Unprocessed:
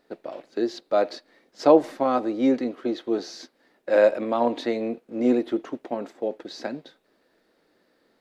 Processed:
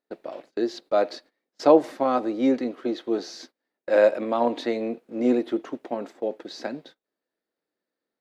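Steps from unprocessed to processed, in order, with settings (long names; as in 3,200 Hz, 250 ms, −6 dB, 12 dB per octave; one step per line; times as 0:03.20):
low-shelf EQ 67 Hz −11 dB
noise gate −48 dBFS, range −21 dB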